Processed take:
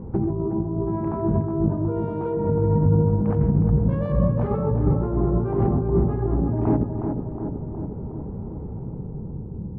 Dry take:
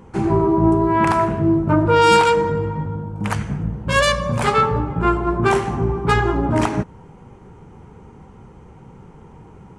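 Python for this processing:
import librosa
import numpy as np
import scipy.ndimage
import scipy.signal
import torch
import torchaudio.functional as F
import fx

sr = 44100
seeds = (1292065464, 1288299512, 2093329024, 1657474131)

p1 = fx.bass_treble(x, sr, bass_db=5, treble_db=0)
p2 = fx.over_compress(p1, sr, threshold_db=-22.0, ratio=-1.0)
p3 = fx.filter_sweep_lowpass(p2, sr, from_hz=570.0, to_hz=280.0, start_s=8.67, end_s=9.45, q=0.78)
y = p3 + fx.echo_tape(p3, sr, ms=365, feedback_pct=74, wet_db=-3.5, lp_hz=1300.0, drive_db=13.0, wow_cents=13, dry=0)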